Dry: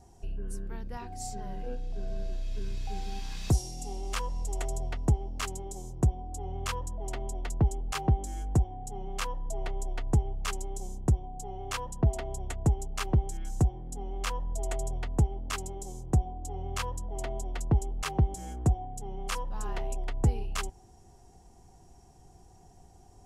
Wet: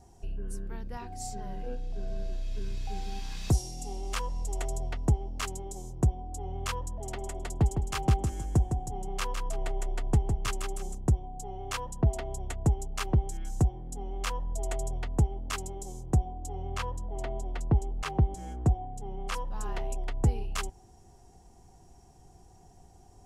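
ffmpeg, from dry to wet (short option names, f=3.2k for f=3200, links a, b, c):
-filter_complex "[0:a]asettb=1/sr,asplit=3[a][b][c];[a]atrim=end=6.814[d];[b]atrim=start=6.81:end=10.95,asetpts=PTS-STARTPTS,afade=t=in:d=0.004:c=qsin,afade=t=out:st=4.136:d=0.004:c=qsin,aecho=1:1:158|316|474:0.473|0.128|0.0345,atrim=end_sample=182574[e];[c]atrim=start=10.946[f];[d][e]acrossfade=d=0.004:c1=hsin:c2=qsin[g];[g][f]acrossfade=d=0.004:c1=qsin:c2=hsin,asettb=1/sr,asplit=3[h][i][j];[h]atrim=end=16.694[k];[i]atrim=start=16.69:end=19.34,asetpts=PTS-STARTPTS,afade=t=in:d=0.004:c=qsin,afade=t=out:st=2.646:d=0.004:c=qsin,aemphasis=mode=reproduction:type=cd[l];[j]atrim=start=19.336[m];[k][l]acrossfade=d=0.004:c1=hsin:c2=qsin[n];[n][m]acrossfade=d=0.004:c1=qsin:c2=hsin"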